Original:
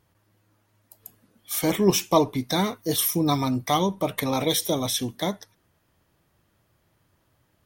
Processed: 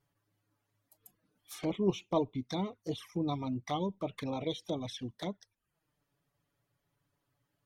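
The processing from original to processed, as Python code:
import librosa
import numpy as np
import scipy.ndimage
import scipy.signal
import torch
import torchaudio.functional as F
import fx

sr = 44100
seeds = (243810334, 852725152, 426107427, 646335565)

y = fx.env_lowpass_down(x, sr, base_hz=2900.0, full_db=-21.0)
y = fx.dereverb_blind(y, sr, rt60_s=0.5)
y = fx.env_flanger(y, sr, rest_ms=7.2, full_db=-22.5)
y = y * librosa.db_to_amplitude(-9.0)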